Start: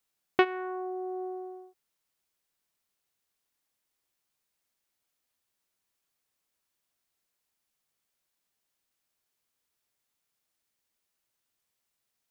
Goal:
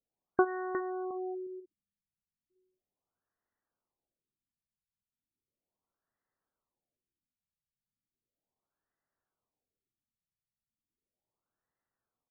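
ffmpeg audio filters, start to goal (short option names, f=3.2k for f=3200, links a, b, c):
-filter_complex "[0:a]asplit=2[a][b];[b]asoftclip=type=hard:threshold=-24dB,volume=-9.5dB[c];[a][c]amix=inputs=2:normalize=0,aecho=1:1:359|718|1077:0.316|0.098|0.0304,afftfilt=real='re*lt(b*sr/1024,210*pow(2100/210,0.5+0.5*sin(2*PI*0.36*pts/sr)))':imag='im*lt(b*sr/1024,210*pow(2100/210,0.5+0.5*sin(2*PI*0.36*pts/sr)))':win_size=1024:overlap=0.75,volume=-3.5dB"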